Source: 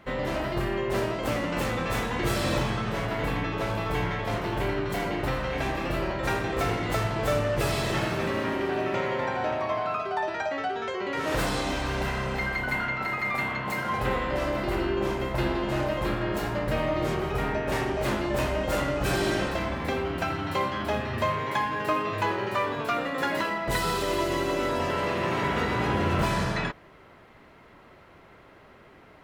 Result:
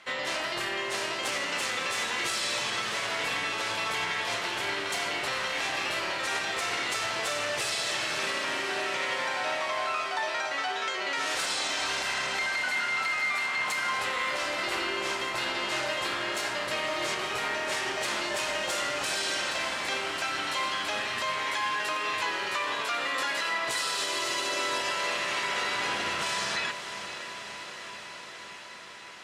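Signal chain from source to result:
meter weighting curve ITU-R 468
brickwall limiter −20.5 dBFS, peak gain reduction 9 dB
on a send: feedback delay with all-pass diffusion 568 ms, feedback 75%, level −10.5 dB
on the sum: level −1 dB

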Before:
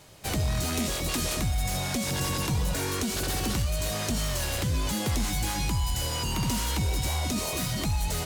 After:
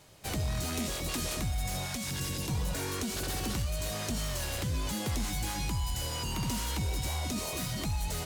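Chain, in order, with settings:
0:01.85–0:02.48: parametric band 280 Hz → 1,400 Hz −9.5 dB 1.3 octaves
level −5 dB

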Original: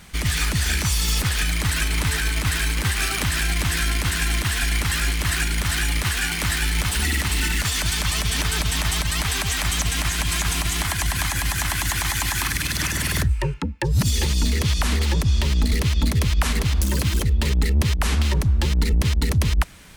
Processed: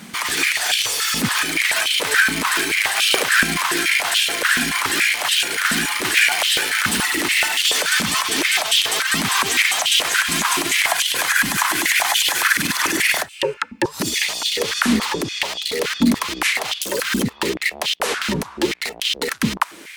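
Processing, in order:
boost into a limiter +14 dB
high-pass on a step sequencer 7 Hz 230–3,100 Hz
level −8 dB

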